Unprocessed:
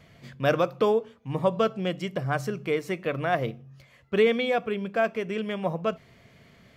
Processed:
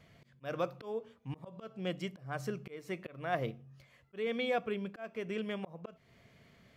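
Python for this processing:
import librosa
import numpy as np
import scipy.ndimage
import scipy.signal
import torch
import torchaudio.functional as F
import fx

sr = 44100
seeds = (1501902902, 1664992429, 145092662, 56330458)

y = fx.auto_swell(x, sr, attack_ms=309.0)
y = y * 10.0 ** (-7.0 / 20.0)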